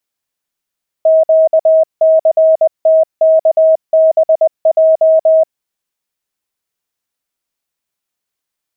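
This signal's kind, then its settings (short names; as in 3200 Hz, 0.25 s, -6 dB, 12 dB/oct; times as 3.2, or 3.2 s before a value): Morse "QCTKBJ" 20 wpm 639 Hz -5 dBFS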